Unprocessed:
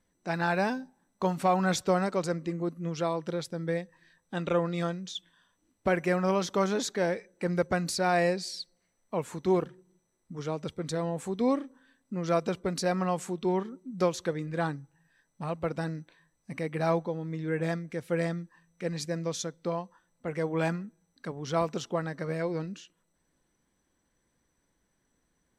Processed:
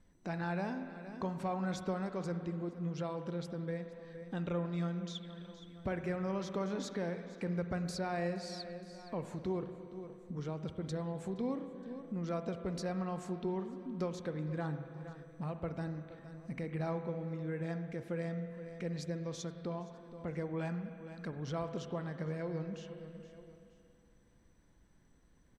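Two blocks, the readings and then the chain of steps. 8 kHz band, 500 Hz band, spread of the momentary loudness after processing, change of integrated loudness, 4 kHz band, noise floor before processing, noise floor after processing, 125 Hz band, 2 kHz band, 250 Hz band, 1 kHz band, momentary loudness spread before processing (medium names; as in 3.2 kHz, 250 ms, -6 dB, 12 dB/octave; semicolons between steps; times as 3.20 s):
-13.0 dB, -10.0 dB, 9 LU, -9.0 dB, -10.5 dB, -76 dBFS, -65 dBFS, -4.5 dB, -11.5 dB, -6.0 dB, -11.5 dB, 13 LU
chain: bass shelf 180 Hz +11 dB; feedback delay 469 ms, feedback 33%, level -22 dB; compression 2:1, threshold -49 dBFS, peak gain reduction 16.5 dB; treble shelf 9.1 kHz -11 dB; spring tank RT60 2.7 s, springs 46/58 ms, chirp 50 ms, DRR 8 dB; trim +2 dB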